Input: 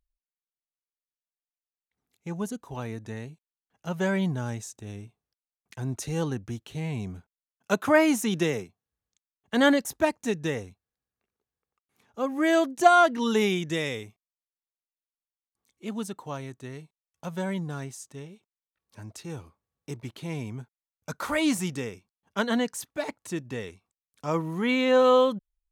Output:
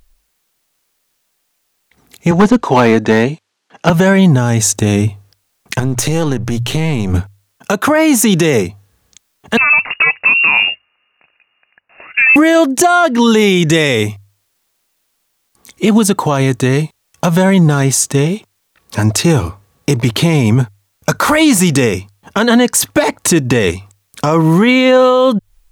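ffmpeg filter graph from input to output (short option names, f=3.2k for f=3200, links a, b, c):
-filter_complex "[0:a]asettb=1/sr,asplit=3[a][b][c];[a]atrim=end=2.314[d];[b]atrim=start=2.31:end=3.9,asetpts=PTS-STARTPTS,afade=t=in:d=0.004:c=qsin,afade=t=out:st=1.586:d=0.004:c=qsin,acrossover=split=3300[e][f];[f]acompressor=threshold=-57dB:ratio=4:attack=1:release=60[g];[e][g]amix=inputs=2:normalize=0,highpass=220,lowpass=5.9k,volume=33dB,asoftclip=hard,volume=-33dB[h];[c]atrim=start=3.896[i];[d][h]acrossfade=d=0.004:c1=hsin:c2=qsin[j];[j][i]acrossfade=d=0.004:c1=qsin:c2=hsin,asettb=1/sr,asplit=3[k][l][m];[k]atrim=end=5.794[n];[l]atrim=start=5.79:end=7.14,asetpts=PTS-STARTPTS,afade=t=in:d=0.004:c=qsin,afade=t=out:st=1.346:d=0.004:c=qsin,aeval=exprs='if(lt(val(0),0),0.447*val(0),val(0))':c=same,bandreject=f=60:t=h:w=6,bandreject=f=120:t=h:w=6,bandreject=f=180:t=h:w=6,acompressor=threshold=-41dB:ratio=8:attack=3.2:release=140:knee=1:detection=peak[o];[m]atrim=start=7.136[p];[n][o]acrossfade=d=0.004:c1=hsin:c2=qsin[q];[q][p]acrossfade=d=0.004:c1=qsin:c2=hsin,asettb=1/sr,asplit=3[r][s][t];[r]atrim=end=9.574[u];[s]atrim=start=9.57:end=12.36,asetpts=PTS-STARTPTS,afade=t=in:d=0.004:c=qsin,afade=t=out:st=2.786:d=0.004:c=qsin,acompressor=threshold=-28dB:ratio=16:attack=3.2:release=140:knee=1:detection=peak,lowpass=f=2.5k:t=q:w=0.5098,lowpass=f=2.5k:t=q:w=0.6013,lowpass=f=2.5k:t=q:w=0.9,lowpass=f=2.5k:t=q:w=2.563,afreqshift=-2900[v];[t]atrim=start=12.356[w];[u][v]acrossfade=d=0.004:c1=hsin:c2=qsin[x];[x][w]acrossfade=d=0.004:c1=qsin:c2=hsin,bandreject=f=50:t=h:w=6,bandreject=f=100:t=h:w=6,acompressor=threshold=-34dB:ratio=10,alimiter=level_in=32dB:limit=-1dB:release=50:level=0:latency=1,volume=-1dB"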